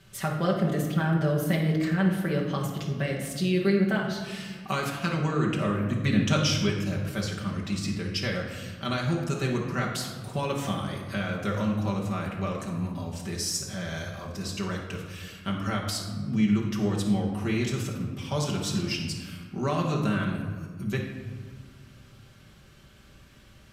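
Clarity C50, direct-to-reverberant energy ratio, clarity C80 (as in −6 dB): 3.5 dB, −3.0 dB, 6.0 dB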